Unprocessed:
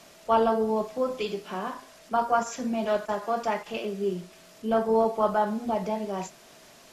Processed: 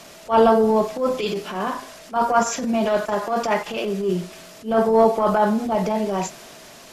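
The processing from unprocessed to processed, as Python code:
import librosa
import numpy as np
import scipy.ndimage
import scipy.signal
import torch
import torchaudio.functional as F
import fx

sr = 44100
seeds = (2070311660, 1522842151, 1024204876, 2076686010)

y = fx.transient(x, sr, attack_db=-12, sustain_db=2)
y = y * 10.0 ** (9.0 / 20.0)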